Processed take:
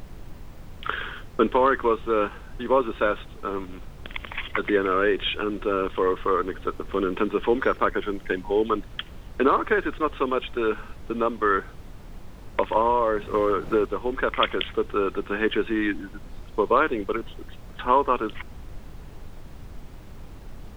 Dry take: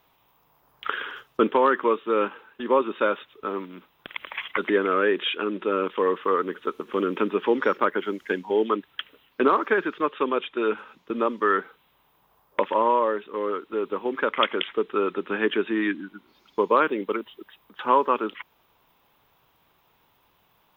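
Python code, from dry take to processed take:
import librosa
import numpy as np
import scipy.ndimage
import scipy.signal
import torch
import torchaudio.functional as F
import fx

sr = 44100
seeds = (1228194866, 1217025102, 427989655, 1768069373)

y = fx.dmg_noise_colour(x, sr, seeds[0], colour='brown', level_db=-38.0)
y = fx.band_squash(y, sr, depth_pct=100, at=(12.76, 13.86))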